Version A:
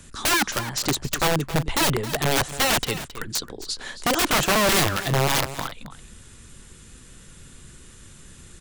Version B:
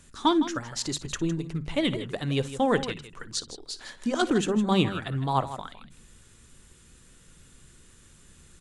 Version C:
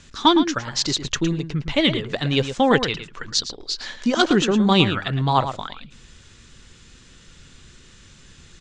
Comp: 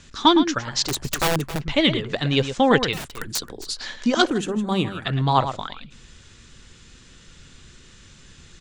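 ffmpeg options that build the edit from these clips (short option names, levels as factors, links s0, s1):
-filter_complex "[0:a]asplit=2[s0][s1];[2:a]asplit=4[s2][s3][s4][s5];[s2]atrim=end=0.94[s6];[s0]atrim=start=0.84:end=1.62[s7];[s3]atrim=start=1.52:end=2.932[s8];[s1]atrim=start=2.928:end=3.772[s9];[s4]atrim=start=3.768:end=4.272[s10];[1:a]atrim=start=4.268:end=5.052[s11];[s5]atrim=start=5.048[s12];[s6][s7]acrossfade=d=0.1:c1=tri:c2=tri[s13];[s13][s8]acrossfade=d=0.1:c1=tri:c2=tri[s14];[s14][s9]acrossfade=d=0.004:c1=hsin:c2=hsin[s15];[s15][s10]acrossfade=d=0.004:c1=hsin:c2=hsin[s16];[s16][s11]acrossfade=d=0.004:c1=hsin:c2=hsin[s17];[s17][s12]acrossfade=d=0.004:c1=hsin:c2=hsin"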